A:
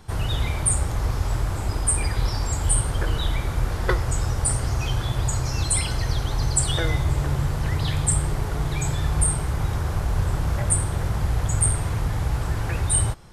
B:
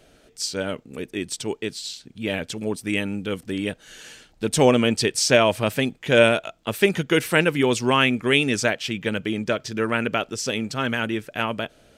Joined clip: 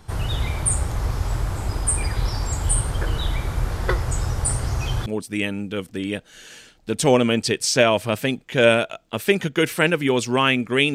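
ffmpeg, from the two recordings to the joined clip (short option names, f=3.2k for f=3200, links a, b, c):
-filter_complex "[0:a]apad=whole_dur=10.94,atrim=end=10.94,atrim=end=5.062[a];[1:a]atrim=start=2.598:end=8.48[b];[a][b]acrossfade=d=0.004:c1=hsin:c2=hsin"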